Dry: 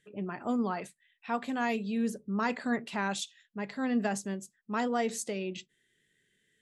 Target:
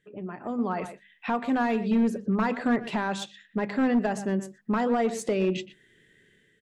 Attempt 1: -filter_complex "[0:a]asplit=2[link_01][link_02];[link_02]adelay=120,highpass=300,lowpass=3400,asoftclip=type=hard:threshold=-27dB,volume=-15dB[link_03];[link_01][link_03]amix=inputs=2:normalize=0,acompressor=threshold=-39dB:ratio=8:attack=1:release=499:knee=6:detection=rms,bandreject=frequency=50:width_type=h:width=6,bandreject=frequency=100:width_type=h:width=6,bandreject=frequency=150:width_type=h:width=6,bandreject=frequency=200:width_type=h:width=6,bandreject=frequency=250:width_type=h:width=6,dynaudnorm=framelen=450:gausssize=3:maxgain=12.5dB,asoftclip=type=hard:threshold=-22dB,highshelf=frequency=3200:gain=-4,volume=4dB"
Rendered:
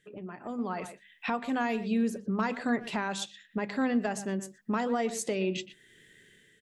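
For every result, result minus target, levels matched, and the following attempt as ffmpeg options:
8,000 Hz band +7.5 dB; downward compressor: peak gain reduction +5.5 dB
-filter_complex "[0:a]asplit=2[link_01][link_02];[link_02]adelay=120,highpass=300,lowpass=3400,asoftclip=type=hard:threshold=-27dB,volume=-15dB[link_03];[link_01][link_03]amix=inputs=2:normalize=0,acompressor=threshold=-39dB:ratio=8:attack=1:release=499:knee=6:detection=rms,bandreject=frequency=50:width_type=h:width=6,bandreject=frequency=100:width_type=h:width=6,bandreject=frequency=150:width_type=h:width=6,bandreject=frequency=200:width_type=h:width=6,bandreject=frequency=250:width_type=h:width=6,dynaudnorm=framelen=450:gausssize=3:maxgain=12.5dB,asoftclip=type=hard:threshold=-22dB,highshelf=frequency=3200:gain=-14,volume=4dB"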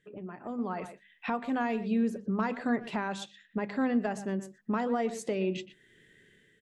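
downward compressor: peak gain reduction +5.5 dB
-filter_complex "[0:a]asplit=2[link_01][link_02];[link_02]adelay=120,highpass=300,lowpass=3400,asoftclip=type=hard:threshold=-27dB,volume=-15dB[link_03];[link_01][link_03]amix=inputs=2:normalize=0,acompressor=threshold=-32.5dB:ratio=8:attack=1:release=499:knee=6:detection=rms,bandreject=frequency=50:width_type=h:width=6,bandreject=frequency=100:width_type=h:width=6,bandreject=frequency=150:width_type=h:width=6,bandreject=frequency=200:width_type=h:width=6,bandreject=frequency=250:width_type=h:width=6,dynaudnorm=framelen=450:gausssize=3:maxgain=12.5dB,asoftclip=type=hard:threshold=-22dB,highshelf=frequency=3200:gain=-14,volume=4dB"

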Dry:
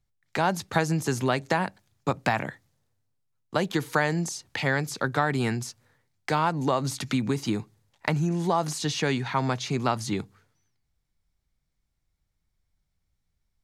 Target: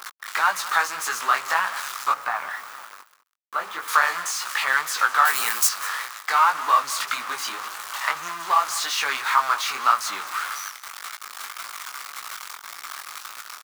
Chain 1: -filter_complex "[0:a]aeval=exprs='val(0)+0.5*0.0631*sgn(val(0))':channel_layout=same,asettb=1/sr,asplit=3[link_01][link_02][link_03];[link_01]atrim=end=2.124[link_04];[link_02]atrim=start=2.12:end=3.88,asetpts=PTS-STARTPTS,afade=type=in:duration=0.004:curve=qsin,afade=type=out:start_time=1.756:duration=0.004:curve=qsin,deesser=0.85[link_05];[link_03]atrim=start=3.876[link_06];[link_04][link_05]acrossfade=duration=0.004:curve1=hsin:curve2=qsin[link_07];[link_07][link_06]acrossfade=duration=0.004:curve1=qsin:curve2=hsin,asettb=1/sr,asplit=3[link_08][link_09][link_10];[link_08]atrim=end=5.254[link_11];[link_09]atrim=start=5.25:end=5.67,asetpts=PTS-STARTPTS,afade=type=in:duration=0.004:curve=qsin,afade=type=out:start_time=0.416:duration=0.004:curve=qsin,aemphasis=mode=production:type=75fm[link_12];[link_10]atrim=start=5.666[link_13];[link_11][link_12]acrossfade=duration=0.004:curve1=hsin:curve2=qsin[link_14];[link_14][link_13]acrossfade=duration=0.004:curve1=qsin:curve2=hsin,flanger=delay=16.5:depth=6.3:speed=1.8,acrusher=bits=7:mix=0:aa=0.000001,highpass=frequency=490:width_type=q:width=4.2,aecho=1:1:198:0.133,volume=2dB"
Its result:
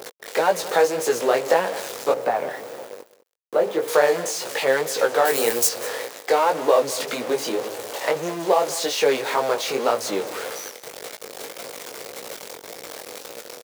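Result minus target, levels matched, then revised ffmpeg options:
500 Hz band +19.5 dB
-filter_complex "[0:a]aeval=exprs='val(0)+0.5*0.0631*sgn(val(0))':channel_layout=same,asettb=1/sr,asplit=3[link_01][link_02][link_03];[link_01]atrim=end=2.124[link_04];[link_02]atrim=start=2.12:end=3.88,asetpts=PTS-STARTPTS,afade=type=in:duration=0.004:curve=qsin,afade=type=out:start_time=1.756:duration=0.004:curve=qsin,deesser=0.85[link_05];[link_03]atrim=start=3.876[link_06];[link_04][link_05]acrossfade=duration=0.004:curve1=hsin:curve2=qsin[link_07];[link_07][link_06]acrossfade=duration=0.004:curve1=qsin:curve2=hsin,asettb=1/sr,asplit=3[link_08][link_09][link_10];[link_08]atrim=end=5.254[link_11];[link_09]atrim=start=5.25:end=5.67,asetpts=PTS-STARTPTS,afade=type=in:duration=0.004:curve=qsin,afade=type=out:start_time=0.416:duration=0.004:curve=qsin,aemphasis=mode=production:type=75fm[link_12];[link_10]atrim=start=5.666[link_13];[link_11][link_12]acrossfade=duration=0.004:curve1=hsin:curve2=qsin[link_14];[link_14][link_13]acrossfade=duration=0.004:curve1=qsin:curve2=hsin,flanger=delay=16.5:depth=6.3:speed=1.8,acrusher=bits=7:mix=0:aa=0.000001,highpass=frequency=1200:width_type=q:width=4.2,aecho=1:1:198:0.133,volume=2dB"

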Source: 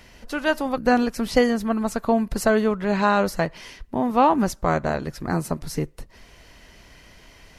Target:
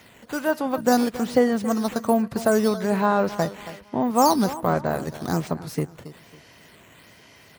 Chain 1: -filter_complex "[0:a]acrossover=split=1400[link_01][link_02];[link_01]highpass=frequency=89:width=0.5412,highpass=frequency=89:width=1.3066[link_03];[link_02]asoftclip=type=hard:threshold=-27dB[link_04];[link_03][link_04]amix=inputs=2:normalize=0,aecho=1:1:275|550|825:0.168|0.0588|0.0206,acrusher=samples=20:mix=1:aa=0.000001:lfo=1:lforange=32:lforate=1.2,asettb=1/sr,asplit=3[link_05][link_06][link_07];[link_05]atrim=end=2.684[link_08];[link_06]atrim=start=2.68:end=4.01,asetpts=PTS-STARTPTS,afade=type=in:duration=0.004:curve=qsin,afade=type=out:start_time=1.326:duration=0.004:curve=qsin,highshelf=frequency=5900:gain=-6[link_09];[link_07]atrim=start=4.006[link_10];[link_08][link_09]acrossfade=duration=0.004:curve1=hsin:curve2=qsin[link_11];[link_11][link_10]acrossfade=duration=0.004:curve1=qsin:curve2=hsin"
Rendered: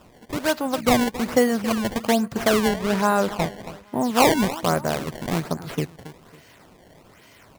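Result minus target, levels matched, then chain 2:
sample-and-hold swept by an LFO: distortion +13 dB; hard clipping: distortion −8 dB
-filter_complex "[0:a]acrossover=split=1400[link_01][link_02];[link_01]highpass=frequency=89:width=0.5412,highpass=frequency=89:width=1.3066[link_03];[link_02]asoftclip=type=hard:threshold=-36.5dB[link_04];[link_03][link_04]amix=inputs=2:normalize=0,aecho=1:1:275|550|825:0.168|0.0588|0.0206,acrusher=samples=5:mix=1:aa=0.000001:lfo=1:lforange=8:lforate=1.2,asettb=1/sr,asplit=3[link_05][link_06][link_07];[link_05]atrim=end=2.684[link_08];[link_06]atrim=start=2.68:end=4.01,asetpts=PTS-STARTPTS,afade=type=in:duration=0.004:curve=qsin,afade=type=out:start_time=1.326:duration=0.004:curve=qsin,highshelf=frequency=5900:gain=-6[link_09];[link_07]atrim=start=4.006[link_10];[link_08][link_09]acrossfade=duration=0.004:curve1=hsin:curve2=qsin[link_11];[link_11][link_10]acrossfade=duration=0.004:curve1=qsin:curve2=hsin"

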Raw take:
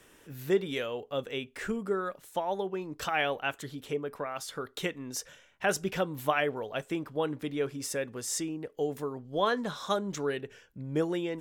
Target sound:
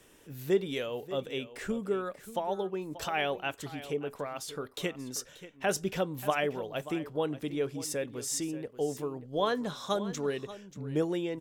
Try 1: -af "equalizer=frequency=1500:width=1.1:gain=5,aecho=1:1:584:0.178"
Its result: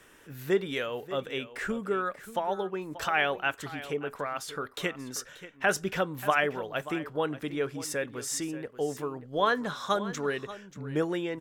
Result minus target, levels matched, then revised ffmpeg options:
2,000 Hz band +5.0 dB
-af "equalizer=frequency=1500:width=1.1:gain=-4.5,aecho=1:1:584:0.178"

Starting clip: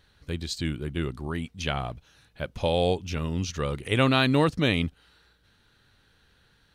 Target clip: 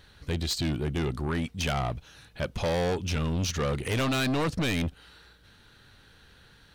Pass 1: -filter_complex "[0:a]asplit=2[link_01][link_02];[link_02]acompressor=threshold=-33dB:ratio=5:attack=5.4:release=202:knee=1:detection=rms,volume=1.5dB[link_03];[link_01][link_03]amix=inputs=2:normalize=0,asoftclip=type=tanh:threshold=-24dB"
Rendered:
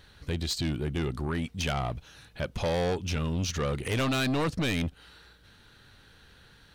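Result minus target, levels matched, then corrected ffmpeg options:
downward compressor: peak gain reduction +8 dB
-filter_complex "[0:a]asplit=2[link_01][link_02];[link_02]acompressor=threshold=-23dB:ratio=5:attack=5.4:release=202:knee=1:detection=rms,volume=1.5dB[link_03];[link_01][link_03]amix=inputs=2:normalize=0,asoftclip=type=tanh:threshold=-24dB"

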